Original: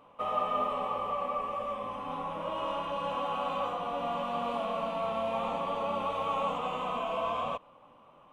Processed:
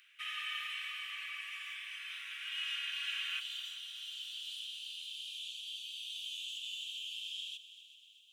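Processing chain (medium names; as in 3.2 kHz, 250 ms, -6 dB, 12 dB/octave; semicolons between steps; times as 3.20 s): steep high-pass 1.6 kHz 72 dB/octave, from 3.39 s 3 kHz; multi-head delay 127 ms, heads second and third, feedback 56%, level -16 dB; trim +9 dB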